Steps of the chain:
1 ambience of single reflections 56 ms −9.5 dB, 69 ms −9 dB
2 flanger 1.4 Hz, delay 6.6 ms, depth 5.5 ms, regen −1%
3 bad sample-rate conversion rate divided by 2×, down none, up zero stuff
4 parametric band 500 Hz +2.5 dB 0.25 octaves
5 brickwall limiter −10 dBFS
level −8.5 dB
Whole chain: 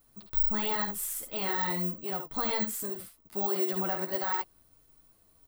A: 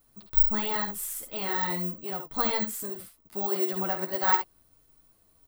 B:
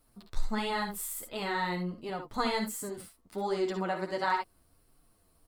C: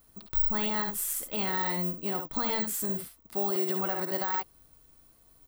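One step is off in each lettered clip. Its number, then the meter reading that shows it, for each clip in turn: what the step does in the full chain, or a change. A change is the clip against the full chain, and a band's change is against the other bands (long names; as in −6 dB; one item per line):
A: 5, change in crest factor +8.0 dB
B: 3, 8 kHz band −3.0 dB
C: 2, 8 kHz band +2.5 dB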